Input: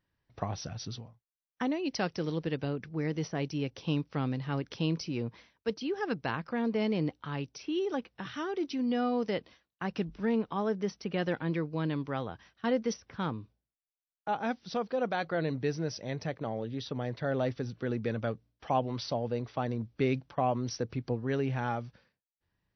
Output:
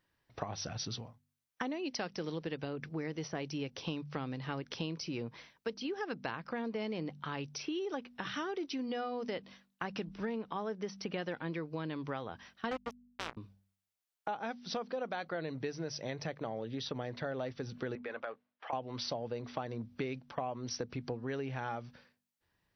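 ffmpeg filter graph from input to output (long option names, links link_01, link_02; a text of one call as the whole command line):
ffmpeg -i in.wav -filter_complex "[0:a]asettb=1/sr,asplit=3[link_01][link_02][link_03];[link_01]atrim=end=12.714[link_04];[link_02]atrim=start=12.71:end=13.37,asetpts=PTS-STARTPTS,afade=type=in:duration=0.004:curve=qsin,afade=type=out:start_time=0.656:duration=0.004:curve=qsin,highshelf=frequency=5300:gain=-3.5,aeval=exprs='val(0)+0.00891*(sin(2*PI*60*n/s)+sin(2*PI*2*60*n/s)/2+sin(2*PI*3*60*n/s)/3+sin(2*PI*4*60*n/s)/4+sin(2*PI*5*60*n/s)/5)':channel_layout=same,acrusher=bits=3:mix=0:aa=0.5[link_05];[link_03]atrim=start=13.366[link_06];[link_04][link_05]acrossfade=duration=0.004:curve1=hsin:curve2=qsin[link_07];[link_07][link_06]acrossfade=duration=0.004:curve1=qsin:curve2=hsin,asettb=1/sr,asplit=3[link_08][link_09][link_10];[link_08]atrim=end=17.954[link_11];[link_09]atrim=start=17.95:end=18.73,asetpts=PTS-STARTPTS,afade=type=in:duration=0.004:curve=qsin,afade=type=out:start_time=0.776:duration=0.004:curve=qsin,highpass=670,lowpass=2300,acompressor=threshold=-37dB:ratio=6:attack=3.2:release=140:knee=1:detection=peak[link_12];[link_10]atrim=start=18.726[link_13];[link_11][link_12]acrossfade=duration=0.004:curve1=hsin:curve2=qsin[link_14];[link_14][link_13]acrossfade=duration=0.004:curve1=qsin:curve2=hsin,lowshelf=frequency=270:gain=-7,bandreject=frequency=48.74:width_type=h:width=4,bandreject=frequency=97.48:width_type=h:width=4,bandreject=frequency=146.22:width_type=h:width=4,bandreject=frequency=194.96:width_type=h:width=4,bandreject=frequency=243.7:width_type=h:width=4,acompressor=threshold=-40dB:ratio=6,volume=5dB" out.wav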